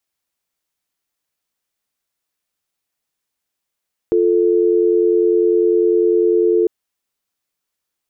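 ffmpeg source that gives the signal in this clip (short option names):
-f lavfi -i "aevalsrc='0.2*(sin(2*PI*350*t)+sin(2*PI*440*t))':d=2.55:s=44100"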